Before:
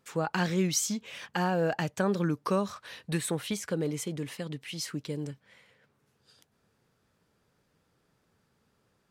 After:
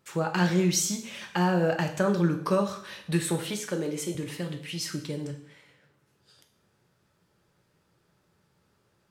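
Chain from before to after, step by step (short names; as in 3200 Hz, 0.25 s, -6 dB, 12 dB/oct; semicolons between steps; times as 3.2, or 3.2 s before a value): 3.47–4.15 HPF 210 Hz; two-slope reverb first 0.63 s, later 1.9 s, from -25 dB, DRR 3.5 dB; gain +1 dB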